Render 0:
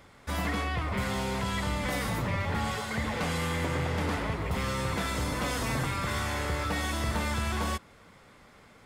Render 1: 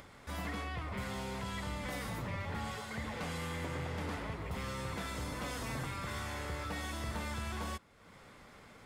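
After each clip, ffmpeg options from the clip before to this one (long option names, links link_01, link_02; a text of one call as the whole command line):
ffmpeg -i in.wav -af "acompressor=mode=upward:threshold=-37dB:ratio=2.5,volume=-9dB" out.wav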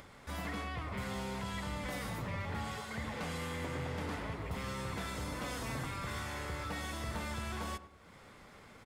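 ffmpeg -i in.wav -filter_complex "[0:a]asplit=2[link_01][link_02];[link_02]adelay=101,lowpass=frequency=1400:poles=1,volume=-12.5dB,asplit=2[link_03][link_04];[link_04]adelay=101,lowpass=frequency=1400:poles=1,volume=0.47,asplit=2[link_05][link_06];[link_06]adelay=101,lowpass=frequency=1400:poles=1,volume=0.47,asplit=2[link_07][link_08];[link_08]adelay=101,lowpass=frequency=1400:poles=1,volume=0.47,asplit=2[link_09][link_10];[link_10]adelay=101,lowpass=frequency=1400:poles=1,volume=0.47[link_11];[link_01][link_03][link_05][link_07][link_09][link_11]amix=inputs=6:normalize=0" out.wav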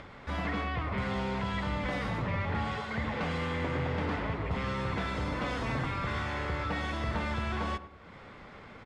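ffmpeg -i in.wav -af "lowpass=3400,volume=7dB" out.wav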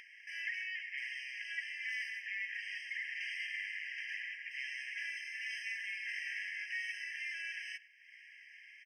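ffmpeg -i in.wav -af "afftfilt=real='re*eq(mod(floor(b*sr/1024/1600),2),1)':imag='im*eq(mod(floor(b*sr/1024/1600),2),1)':win_size=1024:overlap=0.75,volume=1dB" out.wav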